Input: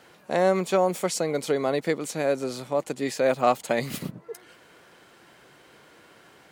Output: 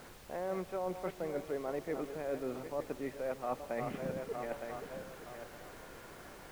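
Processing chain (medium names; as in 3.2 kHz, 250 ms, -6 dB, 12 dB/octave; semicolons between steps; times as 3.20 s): backward echo that repeats 457 ms, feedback 47%, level -13 dB; Bessel low-pass 1.6 kHz, order 8; bass shelf 170 Hz -8.5 dB; reverse; compression 6:1, threshold -38 dBFS, peak gain reduction 19.5 dB; reverse; added noise pink -58 dBFS; on a send: reverberation RT60 1.2 s, pre-delay 120 ms, DRR 17 dB; on the sum: trim +2.5 dB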